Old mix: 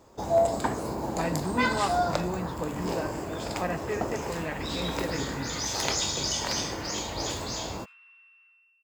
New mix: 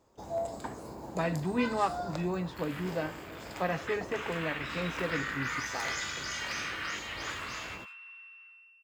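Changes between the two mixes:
first sound −11.5 dB
second sound +6.5 dB

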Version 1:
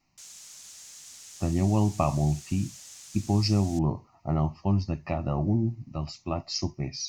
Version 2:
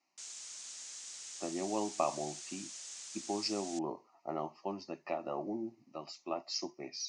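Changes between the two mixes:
speech: add four-pole ladder high-pass 290 Hz, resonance 25%
master: add Butterworth low-pass 9,200 Hz 48 dB per octave

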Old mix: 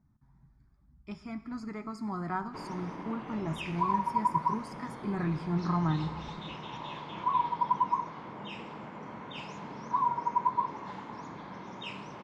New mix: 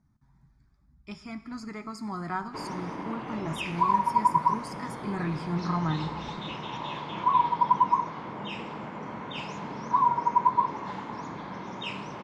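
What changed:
speech: add high-shelf EQ 2,100 Hz +9 dB
background +5.5 dB

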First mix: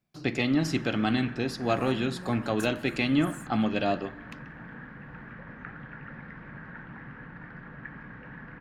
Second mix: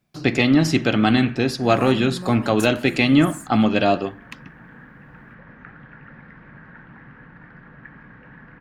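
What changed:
speech +11.5 dB
second sound +9.5 dB
reverb: off

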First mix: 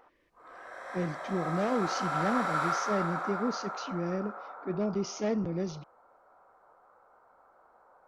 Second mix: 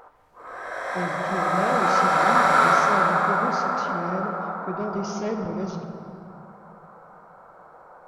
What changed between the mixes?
background +11.0 dB
reverb: on, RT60 2.3 s

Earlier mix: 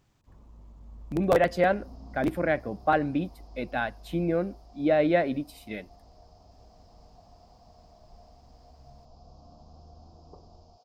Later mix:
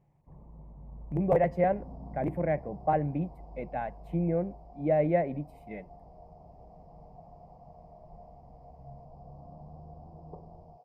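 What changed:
speech −7.5 dB
second sound: add high-frequency loss of the air 100 metres
master: add drawn EQ curve 110 Hz 0 dB, 150 Hz +13 dB, 240 Hz −1 dB, 490 Hz +5 dB, 890 Hz +5 dB, 1,400 Hz −10 dB, 2,100 Hz +1 dB, 3,700 Hz −19 dB, 10,000 Hz −12 dB

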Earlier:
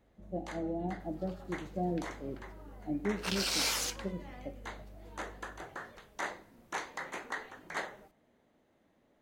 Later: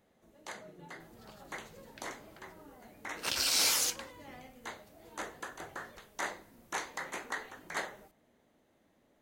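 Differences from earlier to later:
speech: muted
reverb: off
master: add high-shelf EQ 5,800 Hz +9 dB

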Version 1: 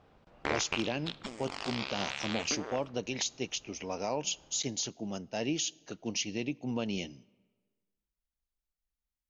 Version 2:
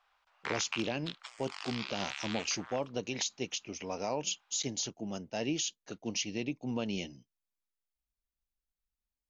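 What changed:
background: add high-pass filter 940 Hz 24 dB per octave
reverb: off

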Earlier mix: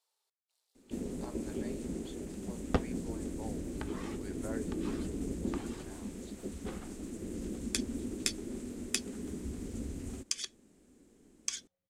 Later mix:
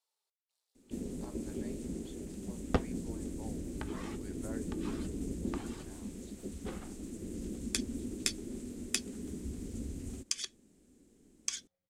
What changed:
speech −4.5 dB
first sound: add parametric band 1,100 Hz −6.5 dB 2.5 octaves

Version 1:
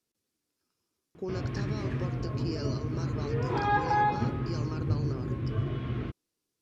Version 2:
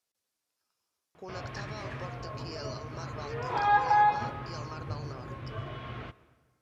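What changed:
background: send on
master: add low shelf with overshoot 470 Hz −10 dB, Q 1.5

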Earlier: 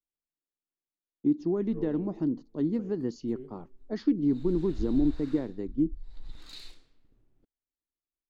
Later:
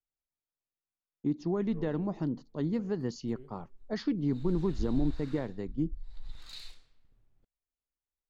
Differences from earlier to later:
speech +5.0 dB
master: add parametric band 310 Hz −11.5 dB 1.1 octaves

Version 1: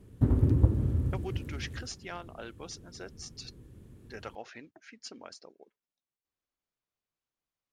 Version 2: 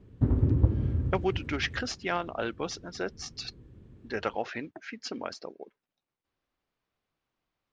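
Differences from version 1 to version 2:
speech +12.0 dB
master: add high-frequency loss of the air 140 metres

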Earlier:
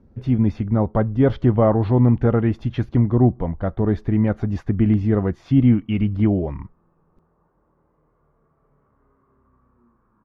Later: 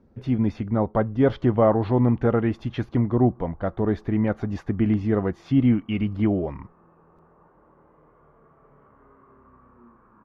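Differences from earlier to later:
background +10.5 dB
master: add low-shelf EQ 180 Hz −9 dB

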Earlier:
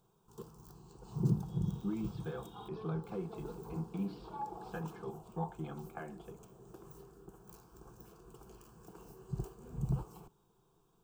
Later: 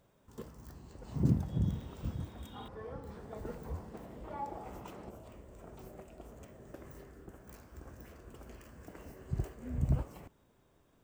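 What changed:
speech: muted
master: remove phaser with its sweep stopped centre 390 Hz, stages 8

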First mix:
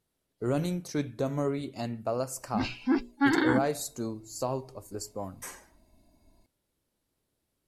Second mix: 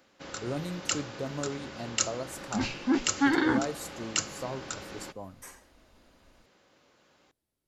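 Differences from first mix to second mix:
speech −5.5 dB
first sound: unmuted

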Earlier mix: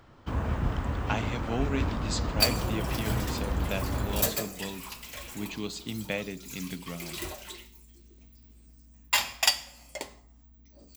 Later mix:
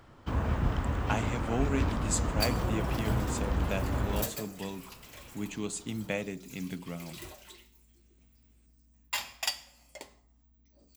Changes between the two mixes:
speech: remove low-pass with resonance 4,500 Hz, resonance Q 2.7
second sound −8.5 dB

